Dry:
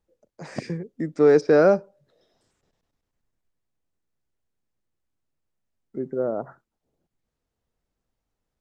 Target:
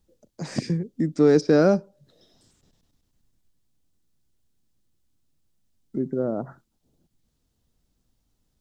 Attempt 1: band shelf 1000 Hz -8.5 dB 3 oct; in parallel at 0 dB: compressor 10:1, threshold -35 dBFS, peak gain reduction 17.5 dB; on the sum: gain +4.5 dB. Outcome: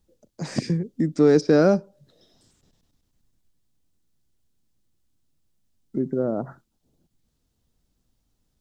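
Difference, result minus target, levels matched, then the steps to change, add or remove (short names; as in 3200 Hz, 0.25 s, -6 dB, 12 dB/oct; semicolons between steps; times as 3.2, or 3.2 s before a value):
compressor: peak gain reduction -6.5 dB
change: compressor 10:1, threshold -42 dBFS, peak gain reduction 23.5 dB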